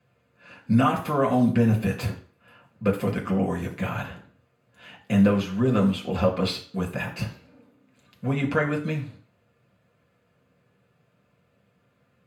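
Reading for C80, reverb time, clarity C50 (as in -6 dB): 14.5 dB, 0.45 s, 11.0 dB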